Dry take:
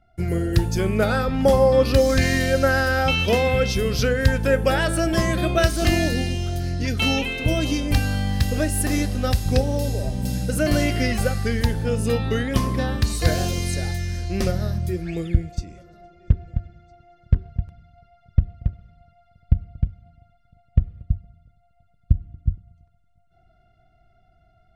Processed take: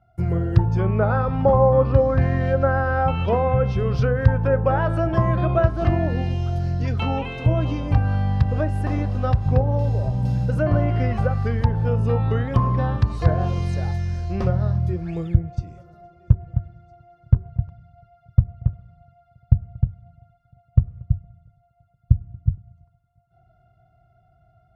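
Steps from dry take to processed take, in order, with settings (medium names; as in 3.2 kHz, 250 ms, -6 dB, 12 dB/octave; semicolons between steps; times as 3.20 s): high-pass 41 Hz; low-pass that closes with the level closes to 1.6 kHz, closed at -15.5 dBFS; ten-band graphic EQ 125 Hz +10 dB, 250 Hz -5 dB, 1 kHz +9 dB, 2 kHz -6 dB, 4 kHz -5 dB, 8 kHz -6 dB; trim -2 dB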